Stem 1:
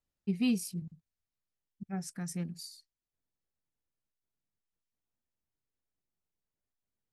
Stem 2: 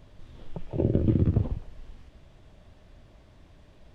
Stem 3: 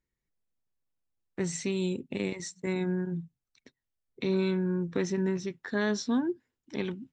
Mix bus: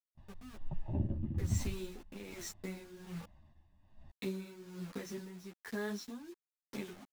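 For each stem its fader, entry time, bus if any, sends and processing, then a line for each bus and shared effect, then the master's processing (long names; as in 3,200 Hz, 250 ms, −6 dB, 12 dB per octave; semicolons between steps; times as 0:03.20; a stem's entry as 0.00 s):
−12.5 dB, 0.00 s, bus A, no send, Chebyshev band-pass filter 190–880 Hz, order 2
−2.0 dB, 0.15 s, no bus, no send, noise gate with hold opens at −45 dBFS; high-shelf EQ 3,100 Hz −10 dB; comb filter 1.1 ms, depth 96%; automatic ducking −7 dB, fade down 1.50 s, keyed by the third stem
−1.5 dB, 0.00 s, bus A, no send, noise gate −50 dBFS, range −8 dB
bus A: 0.0 dB, bit reduction 7 bits; downward compressor, threshold −34 dBFS, peak gain reduction 9 dB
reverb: not used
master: amplitude tremolo 1.2 Hz, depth 65%; string-ensemble chorus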